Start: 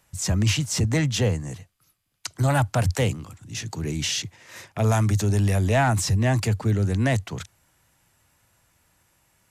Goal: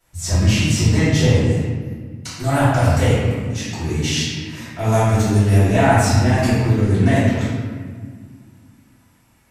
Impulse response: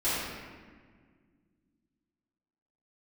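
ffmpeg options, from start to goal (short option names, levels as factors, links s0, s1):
-filter_complex "[1:a]atrim=start_sample=2205[s0];[0:a][s0]afir=irnorm=-1:irlink=0,volume=0.596"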